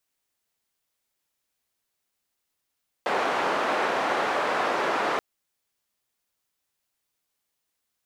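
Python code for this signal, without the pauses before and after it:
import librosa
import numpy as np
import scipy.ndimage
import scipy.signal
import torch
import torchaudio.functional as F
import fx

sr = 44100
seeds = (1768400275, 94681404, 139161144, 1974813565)

y = fx.band_noise(sr, seeds[0], length_s=2.13, low_hz=420.0, high_hz=1100.0, level_db=-25.5)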